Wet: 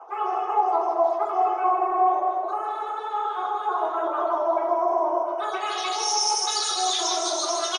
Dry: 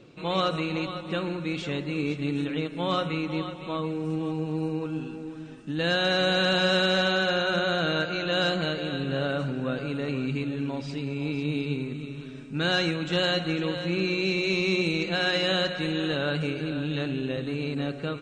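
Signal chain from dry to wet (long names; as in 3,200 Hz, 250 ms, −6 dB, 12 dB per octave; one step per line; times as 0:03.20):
time-frequency cells dropped at random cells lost 38%
Butterworth high-pass 170 Hz 36 dB per octave
low-shelf EQ 500 Hz −10 dB
reversed playback
downward compressor, threshold −41 dBFS, peak gain reduction 16.5 dB
reversed playback
low-pass filter sweep 410 Hz → 2,300 Hz, 0:12.05–0:14.25
on a send: repeating echo 367 ms, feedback 56%, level −8 dB
on the sum: rectangular room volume 150 cubic metres, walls mixed, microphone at 2.8 metres
wrong playback speed 33 rpm record played at 78 rpm
level +5 dB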